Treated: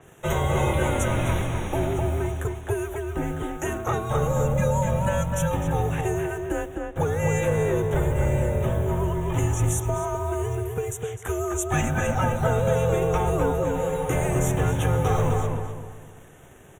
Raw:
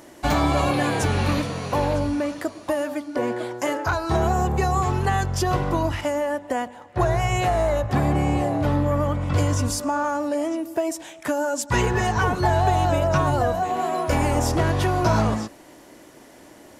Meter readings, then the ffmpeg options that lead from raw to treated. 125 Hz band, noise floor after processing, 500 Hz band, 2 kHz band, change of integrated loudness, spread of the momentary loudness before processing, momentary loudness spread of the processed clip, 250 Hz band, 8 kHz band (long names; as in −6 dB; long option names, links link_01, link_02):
0.0 dB, −45 dBFS, −1.0 dB, −4.0 dB, −2.0 dB, 6 LU, 7 LU, −4.0 dB, −0.5 dB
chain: -filter_complex "[0:a]acrossover=split=340[link_01][link_02];[link_01]acrusher=bits=7:mix=0:aa=0.000001[link_03];[link_03][link_02]amix=inputs=2:normalize=0,afreqshift=-210,asuperstop=centerf=4700:order=8:qfactor=2.1,asplit=2[link_04][link_05];[link_05]adelay=255,lowpass=frequency=2300:poles=1,volume=-3dB,asplit=2[link_06][link_07];[link_07]adelay=255,lowpass=frequency=2300:poles=1,volume=0.36,asplit=2[link_08][link_09];[link_09]adelay=255,lowpass=frequency=2300:poles=1,volume=0.36,asplit=2[link_10][link_11];[link_11]adelay=255,lowpass=frequency=2300:poles=1,volume=0.36,asplit=2[link_12][link_13];[link_13]adelay=255,lowpass=frequency=2300:poles=1,volume=0.36[link_14];[link_04][link_06][link_08][link_10][link_12][link_14]amix=inputs=6:normalize=0,adynamicequalizer=threshold=0.00631:dfrequency=5900:dqfactor=0.7:tfrequency=5900:tqfactor=0.7:attack=5:release=100:ratio=0.375:range=2.5:mode=boostabove:tftype=highshelf,volume=-3.5dB"